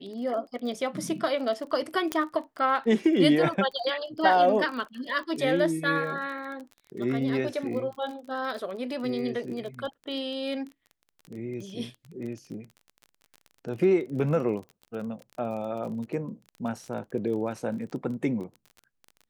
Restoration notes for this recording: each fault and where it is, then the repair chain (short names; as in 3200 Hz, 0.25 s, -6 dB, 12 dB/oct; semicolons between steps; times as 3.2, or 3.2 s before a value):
crackle 28/s -36 dBFS
2.12 pop -12 dBFS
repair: de-click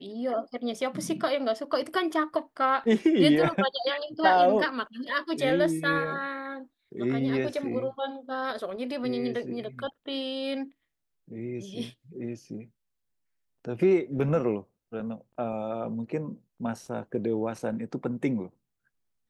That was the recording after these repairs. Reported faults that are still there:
2.12 pop